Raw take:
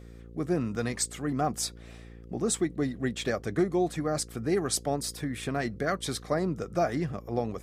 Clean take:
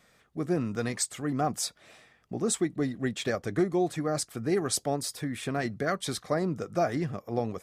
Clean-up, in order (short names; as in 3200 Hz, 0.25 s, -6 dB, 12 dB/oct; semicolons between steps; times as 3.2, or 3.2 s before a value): de-hum 57.6 Hz, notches 9